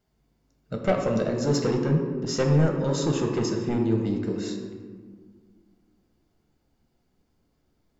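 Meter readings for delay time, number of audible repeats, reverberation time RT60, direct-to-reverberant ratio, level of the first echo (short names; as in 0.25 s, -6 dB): none, none, 1.7 s, 1.5 dB, none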